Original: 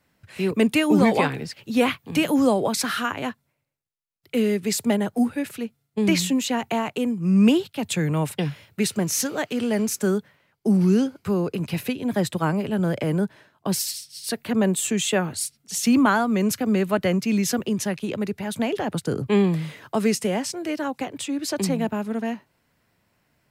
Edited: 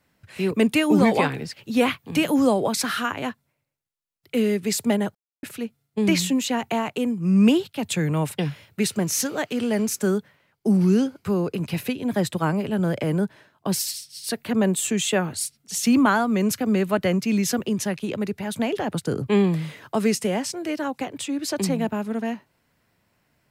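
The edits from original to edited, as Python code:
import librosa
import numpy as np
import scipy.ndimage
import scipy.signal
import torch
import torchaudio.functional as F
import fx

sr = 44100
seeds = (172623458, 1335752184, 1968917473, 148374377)

y = fx.edit(x, sr, fx.silence(start_s=5.15, length_s=0.28), tone=tone)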